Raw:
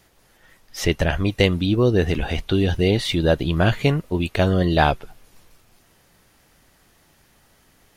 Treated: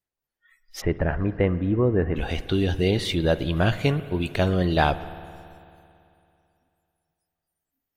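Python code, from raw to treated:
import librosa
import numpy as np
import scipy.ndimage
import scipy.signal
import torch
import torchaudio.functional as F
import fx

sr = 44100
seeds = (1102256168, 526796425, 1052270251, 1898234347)

y = fx.lowpass(x, sr, hz=1800.0, slope=24, at=(0.8, 2.15), fade=0.02)
y = fx.noise_reduce_blind(y, sr, reduce_db=30)
y = fx.rev_spring(y, sr, rt60_s=2.7, pass_ms=(55,), chirp_ms=60, drr_db=14.0)
y = y * librosa.db_to_amplitude(-3.5)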